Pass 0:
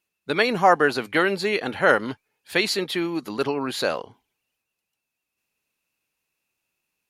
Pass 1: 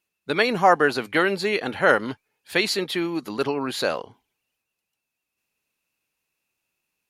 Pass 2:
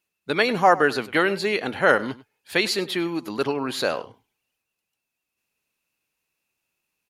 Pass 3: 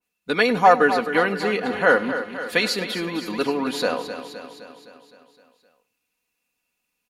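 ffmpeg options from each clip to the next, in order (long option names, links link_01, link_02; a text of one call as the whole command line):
ffmpeg -i in.wav -af anull out.wav
ffmpeg -i in.wav -filter_complex "[0:a]asplit=2[link_01][link_02];[link_02]adelay=99.13,volume=-18dB,highshelf=frequency=4000:gain=-2.23[link_03];[link_01][link_03]amix=inputs=2:normalize=0" out.wav
ffmpeg -i in.wav -af "aecho=1:1:4.1:0.62,aecho=1:1:258|516|774|1032|1290|1548|1806:0.299|0.173|0.1|0.0582|0.0338|0.0196|0.0114,adynamicequalizer=threshold=0.0251:dfrequency=2000:dqfactor=0.7:tfrequency=2000:tqfactor=0.7:attack=5:release=100:ratio=0.375:range=3:mode=cutabove:tftype=highshelf" out.wav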